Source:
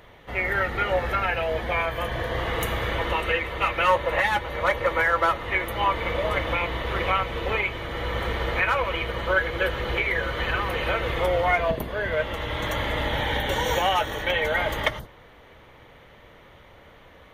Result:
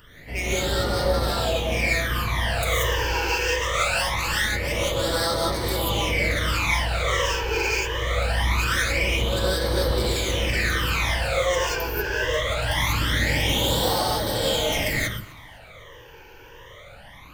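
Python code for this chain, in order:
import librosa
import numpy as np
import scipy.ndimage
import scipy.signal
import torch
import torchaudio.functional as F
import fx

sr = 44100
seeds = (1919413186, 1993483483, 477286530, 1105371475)

y = np.clip(10.0 ** (26.0 / 20.0) * x, -1.0, 1.0) / 10.0 ** (26.0 / 20.0)
y = fx.high_shelf(y, sr, hz=3800.0, db=9.0)
y = fx.rev_gated(y, sr, seeds[0], gate_ms=210, shape='rising', drr_db=-6.0)
y = fx.phaser_stages(y, sr, stages=12, low_hz=200.0, high_hz=2400.0, hz=0.23, feedback_pct=35)
y = fx.echo_feedback(y, sr, ms=253, feedback_pct=39, wet_db=-23.5)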